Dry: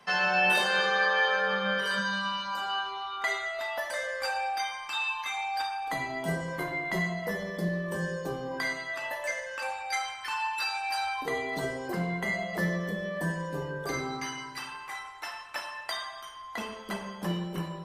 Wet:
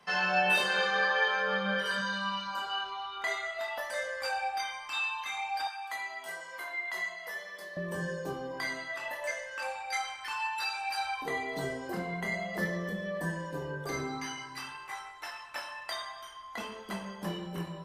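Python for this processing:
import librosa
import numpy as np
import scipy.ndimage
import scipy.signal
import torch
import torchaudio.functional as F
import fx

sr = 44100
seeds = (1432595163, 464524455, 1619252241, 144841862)

y = fx.chorus_voices(x, sr, voices=2, hz=0.5, base_ms=24, depth_ms=3.7, mix_pct=35)
y = fx.highpass(y, sr, hz=1000.0, slope=12, at=(5.67, 7.77))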